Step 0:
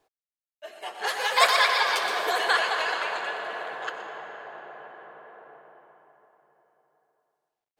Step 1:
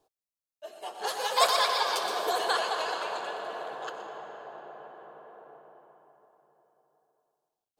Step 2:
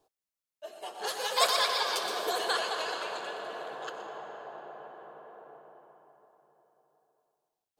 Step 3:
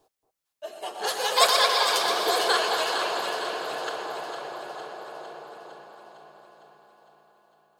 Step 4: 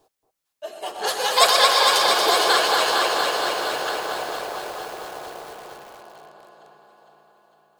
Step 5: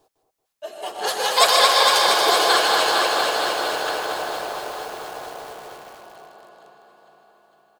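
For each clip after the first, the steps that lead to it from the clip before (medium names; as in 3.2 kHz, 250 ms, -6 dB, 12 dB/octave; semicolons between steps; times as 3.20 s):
peaking EQ 2 kHz -13 dB 1 oct
dynamic bell 850 Hz, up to -5 dB, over -40 dBFS, Q 1.3
echo whose repeats swap between lows and highs 228 ms, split 1.3 kHz, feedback 77%, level -6 dB; trim +6 dB
bit-crushed delay 232 ms, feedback 80%, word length 7-bit, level -6 dB; trim +3.5 dB
delay 155 ms -7 dB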